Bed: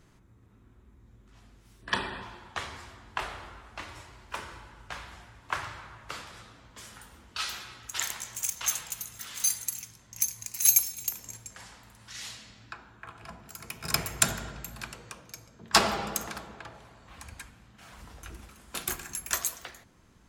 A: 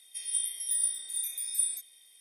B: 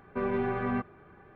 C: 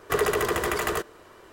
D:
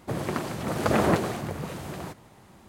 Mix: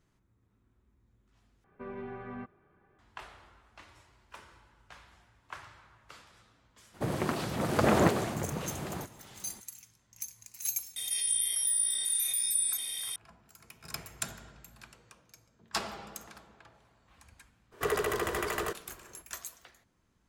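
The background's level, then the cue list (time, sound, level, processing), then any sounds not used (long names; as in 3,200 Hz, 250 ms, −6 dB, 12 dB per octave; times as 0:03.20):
bed −12.5 dB
0:01.64: overwrite with B −12 dB
0:06.93: mix in D −2 dB, fades 0.02 s + wow of a warped record 78 rpm, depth 100 cents
0:10.96: mix in A −2.5 dB + envelope flattener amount 70%
0:17.71: mix in C −6.5 dB, fades 0.02 s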